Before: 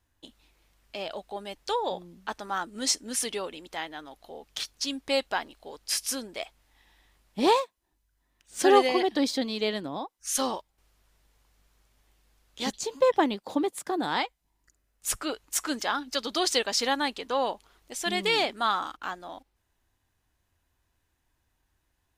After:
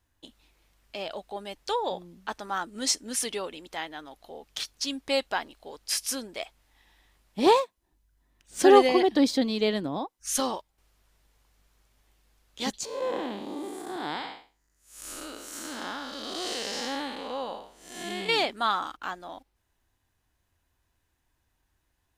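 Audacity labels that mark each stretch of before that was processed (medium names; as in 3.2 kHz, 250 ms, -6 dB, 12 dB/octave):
7.460000	10.400000	bass shelf 480 Hz +6 dB
12.850000	18.290000	spectral blur width 245 ms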